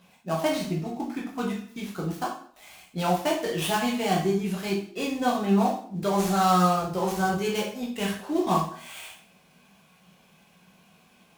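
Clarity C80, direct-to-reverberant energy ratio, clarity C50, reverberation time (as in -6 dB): 10.0 dB, -3.0 dB, 6.0 dB, 0.55 s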